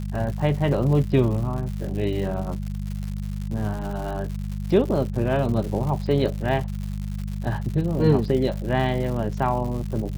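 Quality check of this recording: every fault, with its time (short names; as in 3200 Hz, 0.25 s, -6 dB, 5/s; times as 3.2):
crackle 170/s -31 dBFS
hum 50 Hz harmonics 4 -29 dBFS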